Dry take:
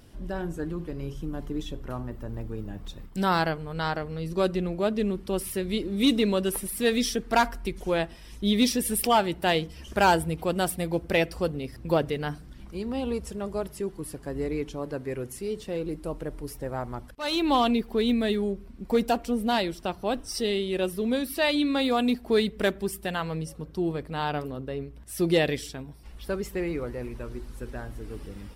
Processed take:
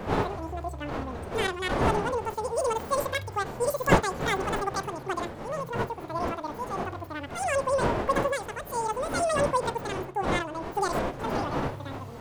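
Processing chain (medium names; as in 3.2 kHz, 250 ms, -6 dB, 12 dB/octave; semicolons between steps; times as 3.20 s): wind noise 310 Hz -26 dBFS; speed mistake 33 rpm record played at 78 rpm; harmonic-percussive split percussive -10 dB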